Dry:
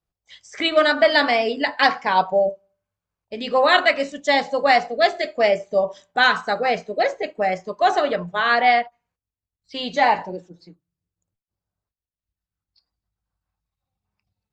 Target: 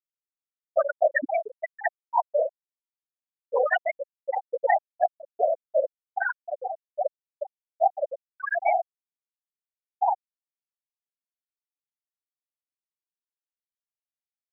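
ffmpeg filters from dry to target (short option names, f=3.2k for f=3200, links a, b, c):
-af "afftfilt=real='hypot(re,im)*cos(2*PI*random(0))':imag='hypot(re,im)*sin(2*PI*random(1))':win_size=512:overlap=0.75,aeval=exprs='0.473*(cos(1*acos(clip(val(0)/0.473,-1,1)))-cos(1*PI/2))+0.0596*(cos(5*acos(clip(val(0)/0.473,-1,1)))-cos(5*PI/2))+0.00376*(cos(6*acos(clip(val(0)/0.473,-1,1)))-cos(6*PI/2))+0.015*(cos(7*acos(clip(val(0)/0.473,-1,1)))-cos(7*PI/2))':c=same,afftfilt=real='re*gte(hypot(re,im),0.562)':imag='im*gte(hypot(re,im),0.562)':win_size=1024:overlap=0.75"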